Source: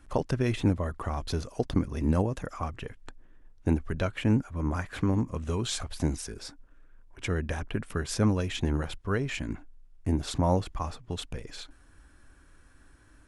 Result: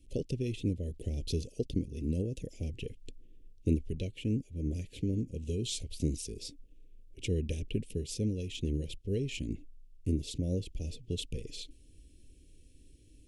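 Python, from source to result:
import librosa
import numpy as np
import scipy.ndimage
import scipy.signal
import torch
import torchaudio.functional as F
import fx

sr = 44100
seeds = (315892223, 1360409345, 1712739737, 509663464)

y = scipy.signal.sosfilt(scipy.signal.ellip(3, 1.0, 70, [470.0, 2700.0], 'bandstop', fs=sr, output='sos'), x)
y = fx.rider(y, sr, range_db=4, speed_s=0.5)
y = y * librosa.db_to_amplitude(-4.0)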